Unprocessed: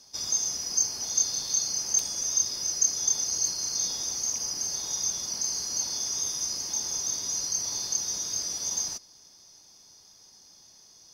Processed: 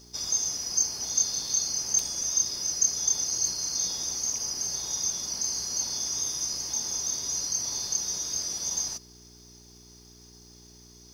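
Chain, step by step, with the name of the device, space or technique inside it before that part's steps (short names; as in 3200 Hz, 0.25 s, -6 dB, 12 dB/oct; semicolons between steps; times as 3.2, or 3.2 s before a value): video cassette with head-switching buzz (buzz 60 Hz, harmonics 7, -55 dBFS -3 dB/oct; white noise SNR 37 dB)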